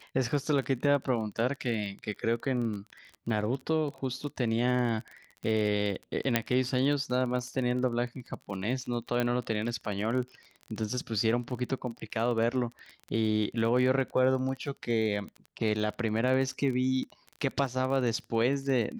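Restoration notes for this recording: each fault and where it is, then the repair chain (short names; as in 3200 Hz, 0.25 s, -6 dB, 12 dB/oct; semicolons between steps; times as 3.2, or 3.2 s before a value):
crackle 23/s -35 dBFS
6.36 pop -8 dBFS
9.2 pop -16 dBFS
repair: de-click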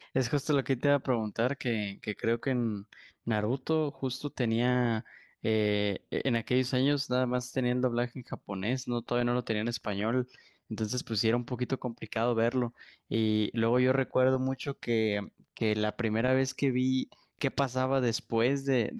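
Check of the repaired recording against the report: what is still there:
6.36 pop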